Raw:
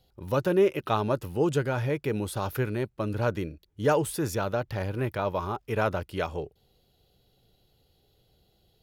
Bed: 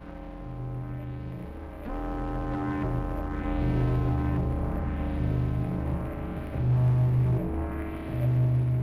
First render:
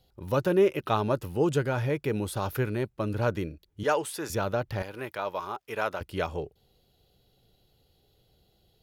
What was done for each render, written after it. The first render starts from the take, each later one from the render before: 3.83–4.30 s: frequency weighting A; 4.82–6.01 s: high-pass 710 Hz 6 dB/octave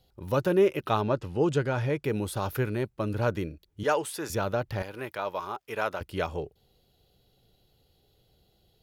1.01–2.02 s: low-pass 4.6 kHz -> 11 kHz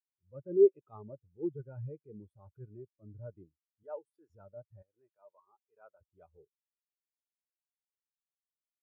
transient shaper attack -8 dB, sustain -3 dB; spectral contrast expander 2.5:1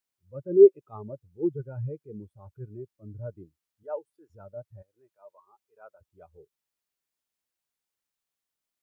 trim +8 dB

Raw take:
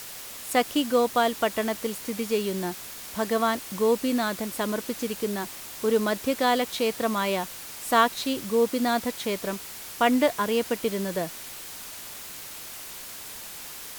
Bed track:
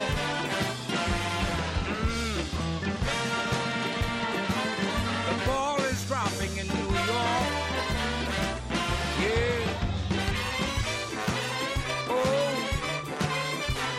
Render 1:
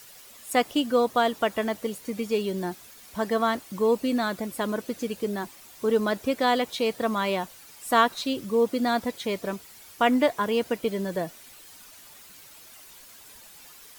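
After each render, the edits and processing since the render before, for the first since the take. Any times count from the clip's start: noise reduction 11 dB, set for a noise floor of -40 dBFS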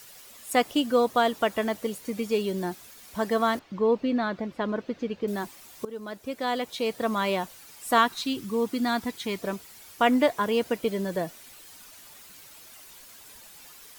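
3.59–5.28 s: distance through air 220 m; 5.85–7.22 s: fade in, from -19 dB; 7.98–9.39 s: peaking EQ 560 Hz -13.5 dB 0.42 oct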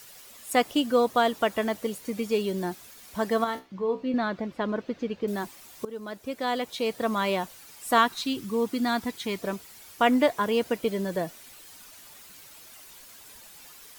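3.44–4.14 s: feedback comb 64 Hz, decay 0.24 s, mix 80%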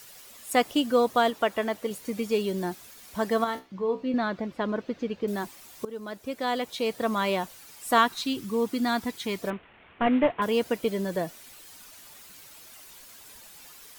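1.30–1.91 s: tone controls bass -5 dB, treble -4 dB; 9.50–10.42 s: CVSD coder 16 kbps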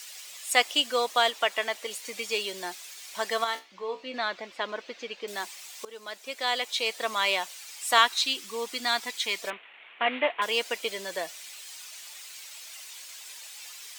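high-pass 630 Hz 12 dB/octave; high-order bell 4.1 kHz +8 dB 2.4 oct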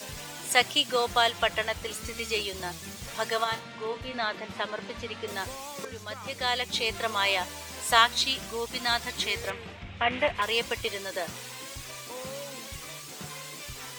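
add bed track -14 dB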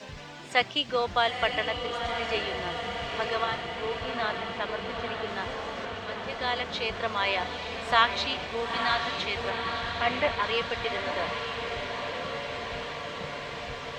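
distance through air 180 m; echo that smears into a reverb 910 ms, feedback 76%, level -6 dB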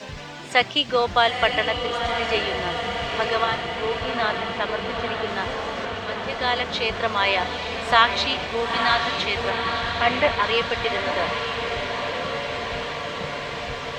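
trim +6.5 dB; peak limiter -3 dBFS, peak gain reduction 1.5 dB

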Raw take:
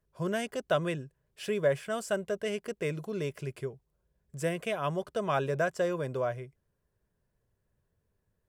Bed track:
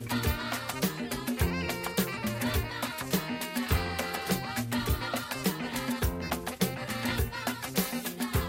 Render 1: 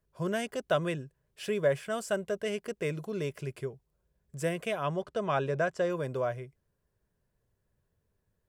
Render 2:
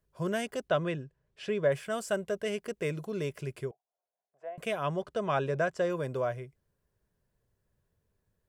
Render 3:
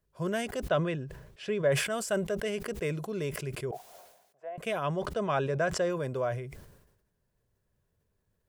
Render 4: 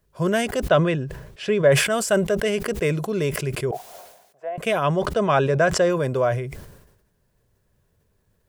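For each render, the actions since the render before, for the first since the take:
4.83–5.90 s: distance through air 54 m
0.68–1.72 s: distance through air 98 m; 3.71–4.58 s: ladder band-pass 760 Hz, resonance 80%
decay stretcher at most 60 dB/s
trim +10 dB

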